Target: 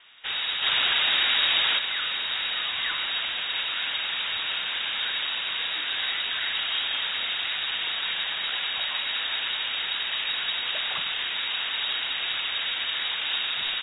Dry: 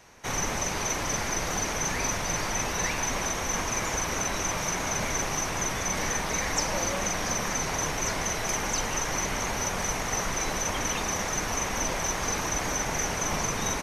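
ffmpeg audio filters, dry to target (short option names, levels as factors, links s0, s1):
-filter_complex "[0:a]asplit=3[s0][s1][s2];[s0]afade=t=out:st=0.62:d=0.02[s3];[s1]acontrast=67,afade=t=in:st=0.62:d=0.02,afade=t=out:st=1.77:d=0.02[s4];[s2]afade=t=in:st=1.77:d=0.02[s5];[s3][s4][s5]amix=inputs=3:normalize=0,lowpass=f=3200:t=q:w=0.5098,lowpass=f=3200:t=q:w=0.6013,lowpass=f=3200:t=q:w=0.9,lowpass=f=3200:t=q:w=2.563,afreqshift=-3800,volume=1.19"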